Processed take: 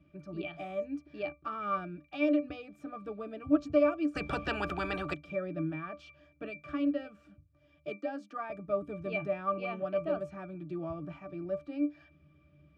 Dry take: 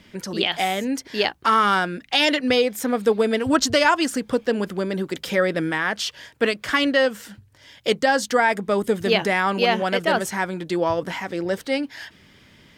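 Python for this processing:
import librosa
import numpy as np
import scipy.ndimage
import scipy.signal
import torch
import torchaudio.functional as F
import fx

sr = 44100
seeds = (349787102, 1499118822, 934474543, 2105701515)

y = fx.cheby1_highpass(x, sr, hz=200.0, order=8, at=(7.88, 8.5))
y = fx.octave_resonator(y, sr, note='D', decay_s=0.16)
y = fx.spectral_comp(y, sr, ratio=10.0, at=(4.15, 5.13), fade=0.02)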